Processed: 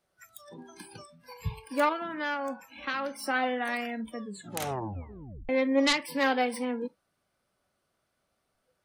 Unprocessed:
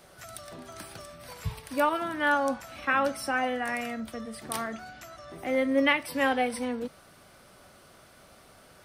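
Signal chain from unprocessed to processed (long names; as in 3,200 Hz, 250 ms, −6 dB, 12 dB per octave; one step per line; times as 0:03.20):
phase distortion by the signal itself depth 0.17 ms
noise reduction from a noise print of the clip's start 23 dB
0:01.92–0:03.19: downward compressor 2 to 1, threshold −34 dBFS, peak gain reduction 7.5 dB
0:04.20: tape stop 1.29 s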